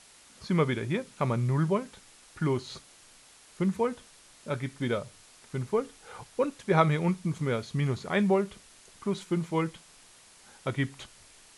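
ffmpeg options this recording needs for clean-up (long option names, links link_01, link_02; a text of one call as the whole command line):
ffmpeg -i in.wav -af "afwtdn=0.0022" out.wav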